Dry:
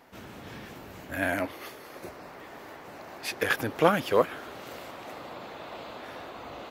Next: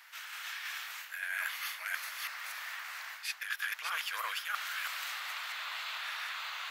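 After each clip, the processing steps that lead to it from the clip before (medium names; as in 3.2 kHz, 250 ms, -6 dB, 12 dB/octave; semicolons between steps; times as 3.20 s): chunks repeated in reverse 325 ms, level -0.5 dB; high-pass 1.4 kHz 24 dB/octave; reverse; compression 12:1, threshold -40 dBFS, peak gain reduction 18 dB; reverse; trim +7 dB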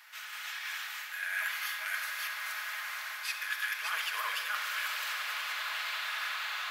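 on a send: echo with a slow build-up 93 ms, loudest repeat 8, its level -16 dB; on the sum: simulated room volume 2200 m³, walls mixed, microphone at 1.4 m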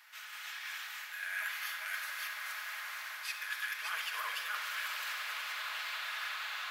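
modulated delay 279 ms, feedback 58%, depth 190 cents, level -12.5 dB; trim -4 dB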